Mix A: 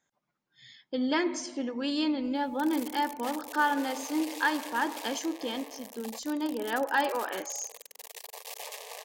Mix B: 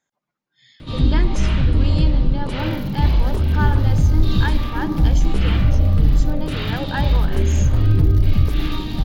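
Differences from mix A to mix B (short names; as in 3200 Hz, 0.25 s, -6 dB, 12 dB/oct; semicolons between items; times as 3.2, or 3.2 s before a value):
first sound: unmuted; second sound: add fixed phaser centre 1800 Hz, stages 8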